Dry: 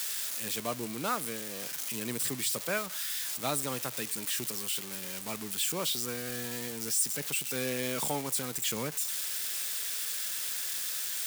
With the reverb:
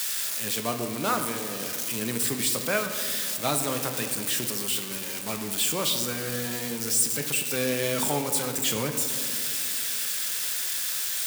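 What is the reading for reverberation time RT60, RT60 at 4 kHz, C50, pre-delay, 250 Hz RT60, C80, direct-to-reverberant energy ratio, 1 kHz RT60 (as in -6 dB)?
2.5 s, 1.1 s, 7.0 dB, 8 ms, 3.2 s, 8.5 dB, 5.0 dB, 2.0 s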